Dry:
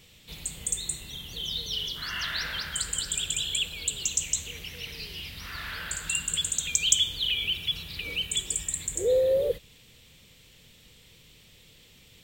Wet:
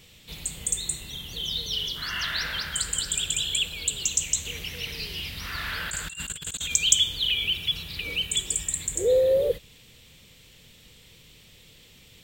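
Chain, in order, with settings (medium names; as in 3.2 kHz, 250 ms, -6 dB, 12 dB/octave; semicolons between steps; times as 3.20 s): 4.45–6.74 s: compressor with a negative ratio -34 dBFS, ratio -0.5; trim +2.5 dB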